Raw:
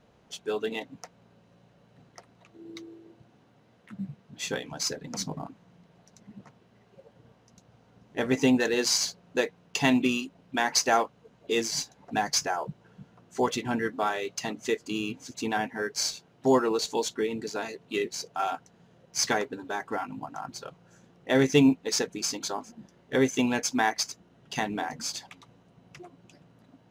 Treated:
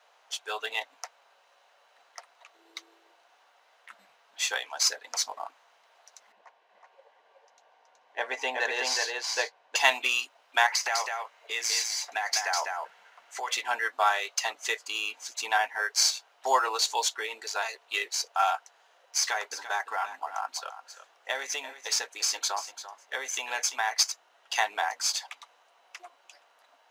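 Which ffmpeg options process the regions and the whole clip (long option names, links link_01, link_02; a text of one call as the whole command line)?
ffmpeg -i in.wav -filter_complex "[0:a]asettb=1/sr,asplit=3[link_01][link_02][link_03];[link_01]atrim=end=6.324[link_04];[link_02]atrim=start=6.32:end=9.76,asetpts=PTS-STARTPTS,afade=type=in:duration=0.004:curve=qsin,afade=type=out:start_time=3.436:duration=0.004:curve=qsin,lowpass=frequency=1700:poles=1,bandreject=frequency=1300:width=5.8,aecho=1:1:372:0.708,atrim=end_sample=151704[link_05];[link_03]atrim=start=9.756[link_06];[link_04][link_05]acrossfade=duration=0.004:curve1=hsin:curve2=qsin[link_07];[link_07][link_06]acrossfade=duration=0.004:curve1=qsin:curve2=hsin,asettb=1/sr,asplit=3[link_08][link_09][link_10];[link_08]atrim=end=10.664[link_11];[link_09]atrim=start=10.66:end=13.56,asetpts=PTS-STARTPTS,afade=type=in:duration=0.004:curve=qsin,afade=type=out:start_time=2.896:duration=0.004:curve=qsin,equalizer=frequency=2100:width_type=o:width=0.47:gain=7.5,acompressor=threshold=-28dB:ratio=16:attack=3.2:release=140:knee=1:detection=peak,aecho=1:1:202:0.631,atrim=end_sample=127890[link_12];[link_10]atrim=start=13.556[link_13];[link_11][link_12]acrossfade=duration=0.004:curve1=hsin:curve2=qsin[link_14];[link_14][link_13]acrossfade=duration=0.004:curve1=qsin:curve2=hsin,asettb=1/sr,asplit=3[link_15][link_16][link_17];[link_15]atrim=end=19.174[link_18];[link_16]atrim=start=19.17:end=23.95,asetpts=PTS-STARTPTS,afade=type=in:duration=0.004:curve=qsin,afade=type=out:start_time=4.776:duration=0.004:curve=qsin,acompressor=threshold=-28dB:ratio=4:attack=3.2:release=140:knee=1:detection=peak,aecho=1:1:342:0.237,atrim=end_sample=210798[link_19];[link_17]atrim=start=23.946[link_20];[link_18][link_19]acrossfade=duration=0.004:curve1=hsin:curve2=qsin[link_21];[link_21][link_20]acrossfade=duration=0.004:curve1=qsin:curve2=hsin,highpass=frequency=720:width=0.5412,highpass=frequency=720:width=1.3066,acontrast=44" out.wav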